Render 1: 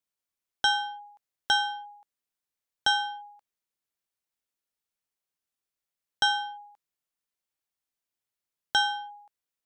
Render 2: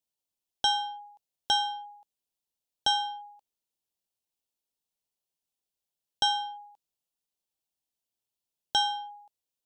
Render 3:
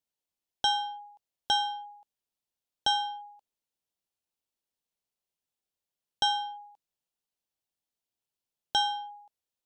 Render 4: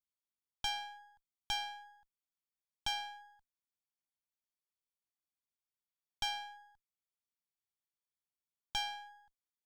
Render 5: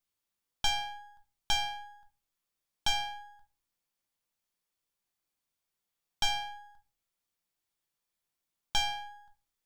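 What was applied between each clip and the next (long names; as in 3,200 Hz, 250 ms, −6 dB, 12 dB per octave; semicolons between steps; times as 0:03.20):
flat-topped bell 1,600 Hz −11 dB 1.2 octaves
high-shelf EQ 5,200 Hz −4.5 dB
lower of the sound and its delayed copy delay 0.88 ms; level −9 dB
rectangular room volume 130 cubic metres, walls furnished, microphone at 0.82 metres; level +7 dB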